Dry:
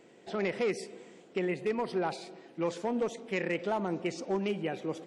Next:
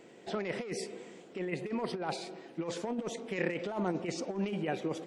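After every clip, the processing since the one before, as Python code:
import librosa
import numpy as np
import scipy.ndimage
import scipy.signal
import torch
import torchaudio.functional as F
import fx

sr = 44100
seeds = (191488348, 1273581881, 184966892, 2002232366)

y = fx.over_compress(x, sr, threshold_db=-33.0, ratio=-0.5)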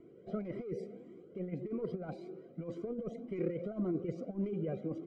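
y = np.convolve(x, np.full(50, 1.0 / 50))[:len(x)]
y = fx.comb_cascade(y, sr, direction='rising', hz=1.8)
y = F.gain(torch.from_numpy(y), 6.5).numpy()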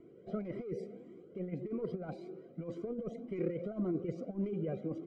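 y = x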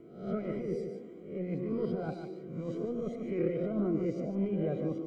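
y = fx.spec_swells(x, sr, rise_s=0.57)
y = y + 10.0 ** (-7.5 / 20.0) * np.pad(y, (int(148 * sr / 1000.0), 0))[:len(y)]
y = F.gain(torch.from_numpy(y), 2.5).numpy()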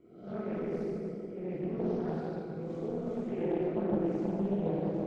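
y = fx.rev_plate(x, sr, seeds[0], rt60_s=2.7, hf_ratio=0.65, predelay_ms=0, drr_db=-8.5)
y = fx.doppler_dist(y, sr, depth_ms=0.67)
y = F.gain(torch.from_numpy(y), -9.0).numpy()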